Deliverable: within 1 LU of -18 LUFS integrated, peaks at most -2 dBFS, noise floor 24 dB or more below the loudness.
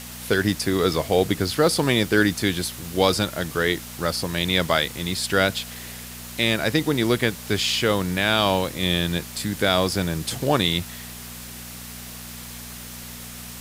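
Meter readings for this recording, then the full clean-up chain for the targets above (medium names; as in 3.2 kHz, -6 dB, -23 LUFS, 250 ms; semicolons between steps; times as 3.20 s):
hum 60 Hz; highest harmonic 240 Hz; hum level -40 dBFS; noise floor -38 dBFS; noise floor target -46 dBFS; loudness -22.0 LUFS; peak level -4.5 dBFS; loudness target -18.0 LUFS
-> de-hum 60 Hz, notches 4; noise reduction 8 dB, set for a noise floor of -38 dBFS; trim +4 dB; peak limiter -2 dBFS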